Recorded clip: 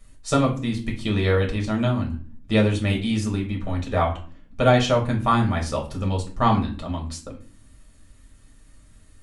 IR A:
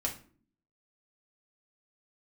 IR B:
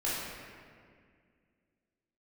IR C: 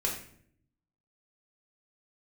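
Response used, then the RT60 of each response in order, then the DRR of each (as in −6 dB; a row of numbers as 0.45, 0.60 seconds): A; 0.45, 2.0, 0.60 seconds; −1.5, −9.0, −2.5 decibels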